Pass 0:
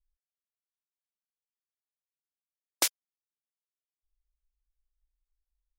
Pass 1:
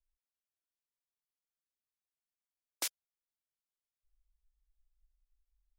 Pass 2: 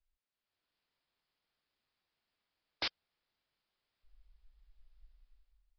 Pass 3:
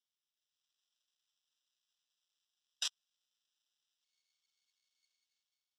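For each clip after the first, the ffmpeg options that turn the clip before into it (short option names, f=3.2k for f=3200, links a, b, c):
-filter_complex "[0:a]asubboost=boost=3.5:cutoff=100,acrossover=split=160[a][b];[b]alimiter=limit=-17.5dB:level=0:latency=1:release=12[c];[a][c]amix=inputs=2:normalize=0,volume=-5.5dB"
-af "dynaudnorm=f=110:g=9:m=12dB,aresample=11025,asoftclip=type=tanh:threshold=-32.5dB,aresample=44100,volume=1.5dB"
-af "acrusher=samples=20:mix=1:aa=0.000001,asuperpass=centerf=4900:order=4:qfactor=1.2,volume=12.5dB"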